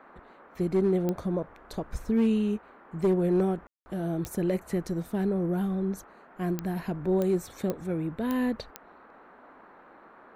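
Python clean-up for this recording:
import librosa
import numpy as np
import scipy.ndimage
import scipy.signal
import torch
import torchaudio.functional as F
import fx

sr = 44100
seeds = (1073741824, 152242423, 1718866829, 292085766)

y = fx.fix_declip(x, sr, threshold_db=-18.5)
y = fx.fix_declick_ar(y, sr, threshold=10.0)
y = fx.fix_ambience(y, sr, seeds[0], print_start_s=8.92, print_end_s=9.42, start_s=3.67, end_s=3.86)
y = fx.noise_reduce(y, sr, print_start_s=8.92, print_end_s=9.42, reduce_db=20.0)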